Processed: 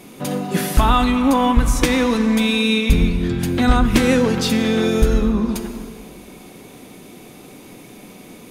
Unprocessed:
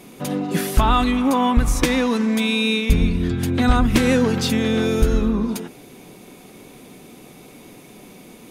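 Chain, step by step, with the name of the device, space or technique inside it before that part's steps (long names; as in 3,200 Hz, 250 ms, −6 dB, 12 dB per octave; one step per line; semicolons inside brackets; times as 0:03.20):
compressed reverb return (on a send at −5 dB: convolution reverb RT60 1.7 s, pre-delay 11 ms + downward compressor, threshold −19 dBFS, peak gain reduction 7.5 dB)
on the sum: level +1.5 dB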